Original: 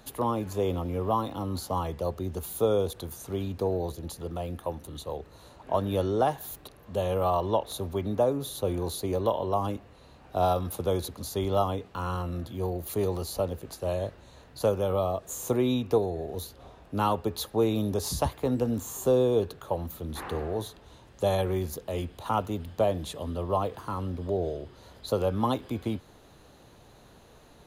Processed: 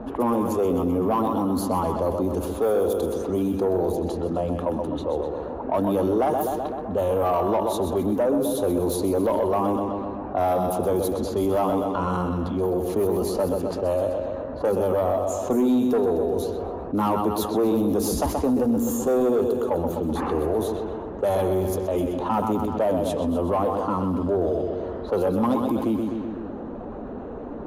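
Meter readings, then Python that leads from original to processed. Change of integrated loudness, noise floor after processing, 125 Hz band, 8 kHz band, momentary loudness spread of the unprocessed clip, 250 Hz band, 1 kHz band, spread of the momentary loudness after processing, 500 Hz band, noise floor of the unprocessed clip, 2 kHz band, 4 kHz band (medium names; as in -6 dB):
+6.0 dB, -33 dBFS, +1.0 dB, +2.5 dB, 11 LU, +9.0 dB, +5.0 dB, 7 LU, +6.0 dB, -54 dBFS, +4.0 dB, -1.5 dB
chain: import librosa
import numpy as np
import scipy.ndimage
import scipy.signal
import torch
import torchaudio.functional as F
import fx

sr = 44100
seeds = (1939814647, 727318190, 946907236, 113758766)

y = fx.spec_quant(x, sr, step_db=15)
y = fx.echo_feedback(y, sr, ms=127, feedback_pct=54, wet_db=-8.5)
y = 10.0 ** (-23.0 / 20.0) * np.tanh(y / 10.0 ** (-23.0 / 20.0))
y = fx.graphic_eq(y, sr, hz=(125, 250, 2000, 4000, 8000), db=(-9, 9, -7, -10, -5))
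y = fx.env_lowpass(y, sr, base_hz=1000.0, full_db=-27.0)
y = fx.low_shelf(y, sr, hz=340.0, db=-5.0)
y = fx.env_flatten(y, sr, amount_pct=50)
y = y * 10.0 ** (5.0 / 20.0)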